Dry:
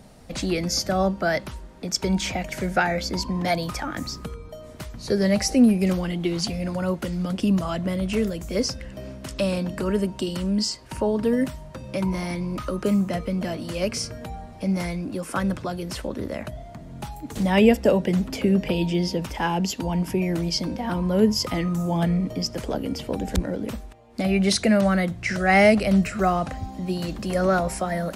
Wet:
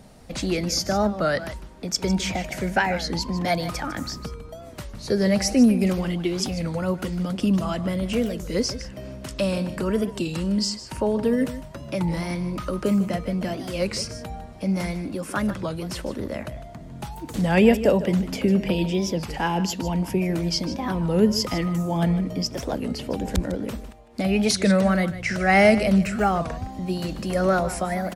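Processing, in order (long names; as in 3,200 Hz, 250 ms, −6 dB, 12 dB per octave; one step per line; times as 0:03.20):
on a send: single-tap delay 153 ms −13.5 dB
on the sum: wow of a warped record 33 1/3 rpm, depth 160 cents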